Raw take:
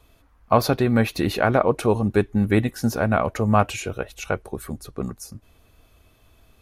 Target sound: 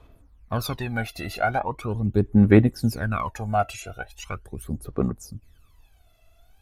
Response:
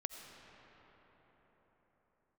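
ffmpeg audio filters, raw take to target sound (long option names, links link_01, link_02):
-filter_complex "[0:a]asettb=1/sr,asplit=3[link_01][link_02][link_03];[link_01]atrim=end=1.594[link_04];[link_02]atrim=start=1.59:end=2.26,asetpts=PTS-STARTPTS,afade=type=in:duration=0.004:curve=qsin,afade=type=out:start_time=0.666:duration=0.004:curve=qsin,equalizer=frequency=7900:width=0.5:gain=-11[link_05];[link_03]atrim=start=2.256[link_06];[link_04][link_05]acrossfade=duration=0.004:curve1=hsin:curve2=qsin[link_07];[link_07][link_06]acrossfade=duration=0.004:curve1=qsin:curve2=hsin,aphaser=in_gain=1:out_gain=1:delay=1.5:decay=0.8:speed=0.4:type=sinusoidal,volume=-9dB"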